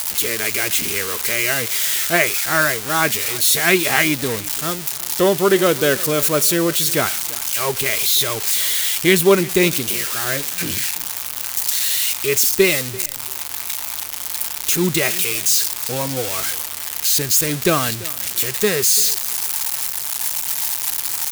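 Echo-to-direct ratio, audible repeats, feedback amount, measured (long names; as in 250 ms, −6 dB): −20.0 dB, 2, 19%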